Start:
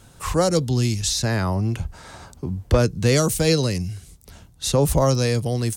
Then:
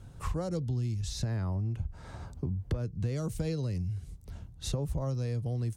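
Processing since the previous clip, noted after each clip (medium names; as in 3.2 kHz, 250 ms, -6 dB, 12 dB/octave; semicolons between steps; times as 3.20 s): FFT filter 110 Hz 0 dB, 220 Hz -6 dB, 15 kHz -20 dB; compression 6:1, threshold -33 dBFS, peak gain reduction 19 dB; trim +3 dB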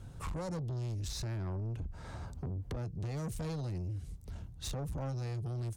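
saturation -35.5 dBFS, distortion -9 dB; trim +1 dB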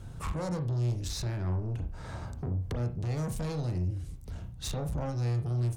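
reverberation, pre-delay 33 ms, DRR 6.5 dB; trim +4 dB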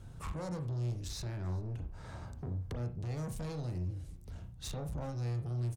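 delay 392 ms -24 dB; trim -6 dB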